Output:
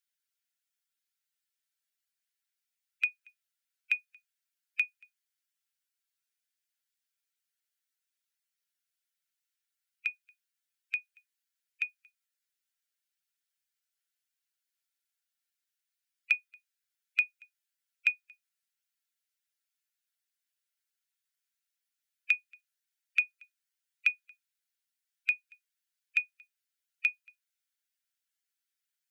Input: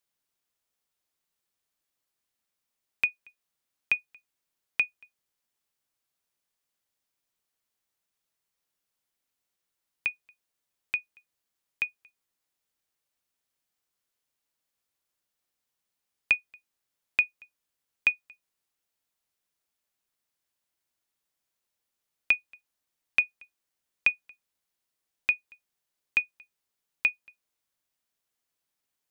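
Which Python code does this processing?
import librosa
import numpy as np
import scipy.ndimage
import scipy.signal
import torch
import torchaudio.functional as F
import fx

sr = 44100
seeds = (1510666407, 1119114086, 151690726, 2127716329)

y = fx.spec_quant(x, sr, step_db=15)
y = fx.brickwall_highpass(y, sr, low_hz=1300.0)
y = y * 10.0 ** (-3.0 / 20.0)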